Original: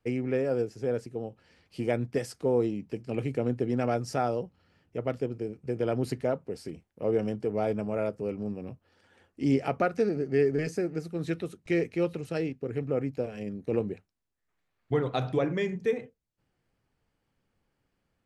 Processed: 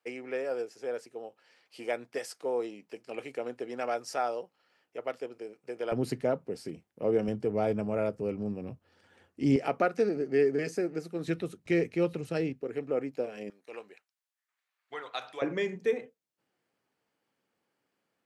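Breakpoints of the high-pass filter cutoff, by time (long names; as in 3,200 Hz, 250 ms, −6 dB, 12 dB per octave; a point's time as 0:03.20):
570 Hz
from 0:05.92 130 Hz
from 0:07.28 57 Hz
from 0:09.56 230 Hz
from 0:11.28 95 Hz
from 0:12.62 300 Hz
from 0:13.50 1,100 Hz
from 0:15.42 270 Hz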